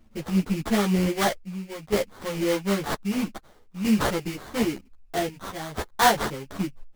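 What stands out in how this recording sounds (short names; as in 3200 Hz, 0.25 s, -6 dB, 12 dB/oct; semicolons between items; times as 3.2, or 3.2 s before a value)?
chopped level 0.52 Hz, depth 60%, duty 75%; aliases and images of a low sample rate 2600 Hz, jitter 20%; a shimmering, thickened sound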